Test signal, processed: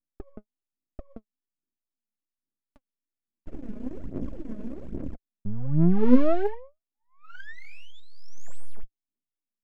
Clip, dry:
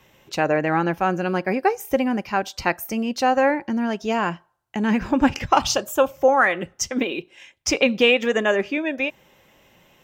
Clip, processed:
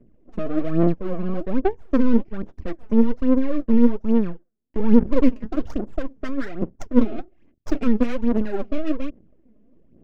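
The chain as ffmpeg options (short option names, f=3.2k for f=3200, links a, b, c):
-filter_complex "[0:a]equalizer=f=125:t=o:w=1:g=-4,equalizer=f=250:t=o:w=1:g=12,equalizer=f=500:t=o:w=1:g=8,equalizer=f=1k:t=o:w=1:g=-12,equalizer=f=2k:t=o:w=1:g=-6,equalizer=f=4k:t=o:w=1:g=-11,equalizer=f=8k:t=o:w=1:g=5,asplit=2[a][b];[b]acompressor=threshold=-22dB:ratio=6,volume=-3dB[c];[a][c]amix=inputs=2:normalize=0,asoftclip=type=hard:threshold=-5dB,asuperstop=centerf=730:order=8:qfactor=0.68,aeval=exprs='max(val(0),0)':c=same,adynamicsmooth=sensitivity=1.5:basefreq=820,aphaser=in_gain=1:out_gain=1:delay=4.8:decay=0.65:speed=1.2:type=sinusoidal,volume=-5.5dB"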